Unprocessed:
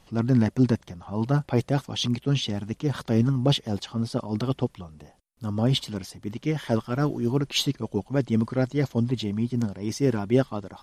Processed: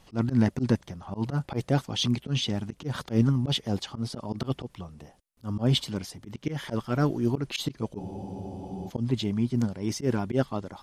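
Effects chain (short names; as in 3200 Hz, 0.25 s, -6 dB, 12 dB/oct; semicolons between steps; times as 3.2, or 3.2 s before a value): auto swell 0.102 s; spectral freeze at 8, 0.88 s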